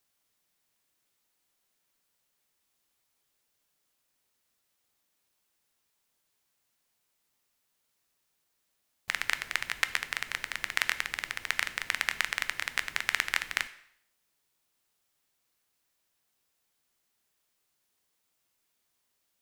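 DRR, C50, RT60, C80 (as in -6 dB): 11.5 dB, 15.5 dB, 0.65 s, 18.0 dB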